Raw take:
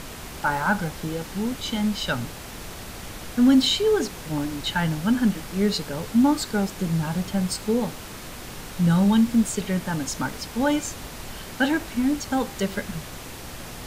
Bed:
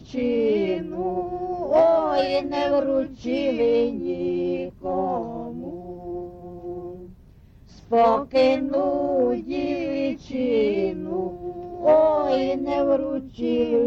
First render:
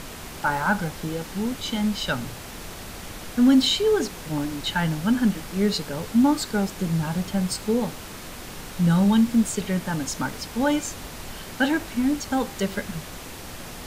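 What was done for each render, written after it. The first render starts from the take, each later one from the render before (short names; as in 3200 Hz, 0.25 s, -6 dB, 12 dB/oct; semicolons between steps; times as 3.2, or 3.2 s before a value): de-hum 60 Hz, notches 2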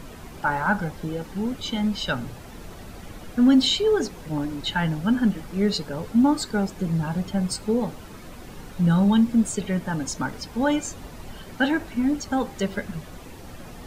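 denoiser 10 dB, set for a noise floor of -38 dBFS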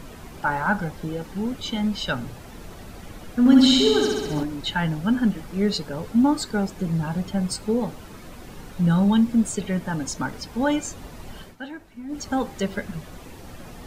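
3.39–4.43 flutter echo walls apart 11.3 m, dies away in 1.4 s; 11.42–12.22 dip -14 dB, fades 0.14 s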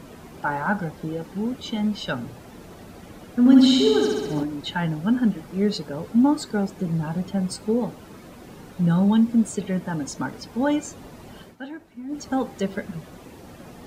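HPF 210 Hz 6 dB/oct; tilt shelf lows +4 dB, about 660 Hz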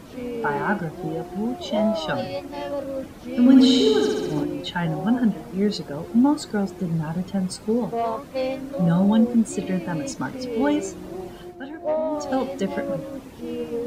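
add bed -8 dB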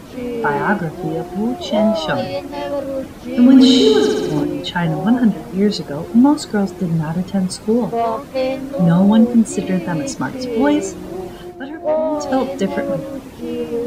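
gain +6.5 dB; limiter -1 dBFS, peak gain reduction 3 dB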